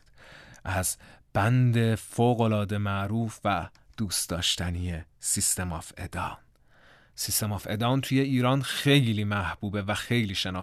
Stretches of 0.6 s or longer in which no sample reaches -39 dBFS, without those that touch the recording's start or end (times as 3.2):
6.35–7.18